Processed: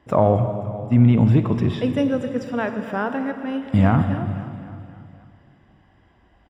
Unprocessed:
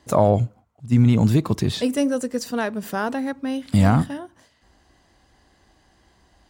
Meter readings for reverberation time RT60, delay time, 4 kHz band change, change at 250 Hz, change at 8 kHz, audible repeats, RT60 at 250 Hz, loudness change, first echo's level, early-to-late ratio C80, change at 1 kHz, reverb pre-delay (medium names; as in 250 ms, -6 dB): 2.6 s, 263 ms, -6.0 dB, +1.0 dB, under -15 dB, 4, 2.6 s, +0.5 dB, -15.0 dB, 8.0 dB, +0.5 dB, 31 ms